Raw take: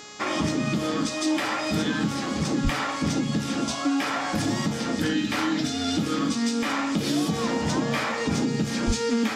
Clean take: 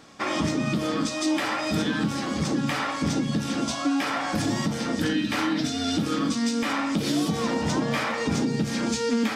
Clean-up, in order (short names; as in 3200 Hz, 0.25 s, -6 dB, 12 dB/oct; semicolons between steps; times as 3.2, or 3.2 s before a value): de-hum 418 Hz, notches 18; 2.63–2.75 HPF 140 Hz 24 dB/oct; 8.86–8.98 HPF 140 Hz 24 dB/oct